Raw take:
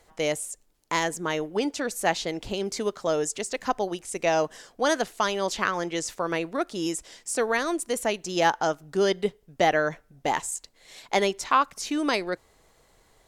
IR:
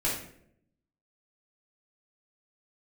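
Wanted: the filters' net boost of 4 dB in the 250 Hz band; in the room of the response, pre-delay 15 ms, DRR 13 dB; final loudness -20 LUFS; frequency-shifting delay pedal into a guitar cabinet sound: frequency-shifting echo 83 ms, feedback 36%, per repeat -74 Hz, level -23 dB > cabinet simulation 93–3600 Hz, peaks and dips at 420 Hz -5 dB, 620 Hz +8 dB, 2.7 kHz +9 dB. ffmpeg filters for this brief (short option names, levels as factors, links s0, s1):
-filter_complex "[0:a]equalizer=f=250:t=o:g=6.5,asplit=2[s0][s1];[1:a]atrim=start_sample=2205,adelay=15[s2];[s1][s2]afir=irnorm=-1:irlink=0,volume=0.0891[s3];[s0][s3]amix=inputs=2:normalize=0,asplit=3[s4][s5][s6];[s5]adelay=83,afreqshift=-74,volume=0.0708[s7];[s6]adelay=166,afreqshift=-148,volume=0.0254[s8];[s4][s7][s8]amix=inputs=3:normalize=0,highpass=93,equalizer=f=420:t=q:w=4:g=-5,equalizer=f=620:t=q:w=4:g=8,equalizer=f=2700:t=q:w=4:g=9,lowpass=f=3600:w=0.5412,lowpass=f=3600:w=1.3066,volume=1.5"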